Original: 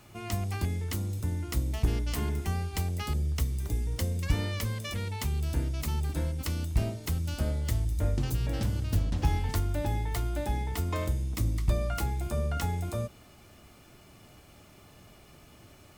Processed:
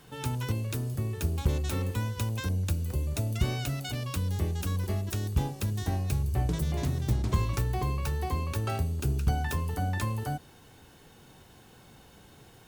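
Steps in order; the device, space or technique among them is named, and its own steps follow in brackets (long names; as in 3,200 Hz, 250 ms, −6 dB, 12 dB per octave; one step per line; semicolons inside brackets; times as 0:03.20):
nightcore (speed change +26%)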